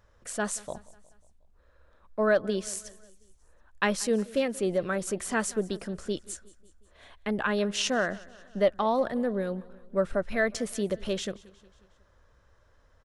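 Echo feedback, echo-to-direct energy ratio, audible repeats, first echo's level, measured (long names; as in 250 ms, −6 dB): 55%, −20.5 dB, 3, −22.0 dB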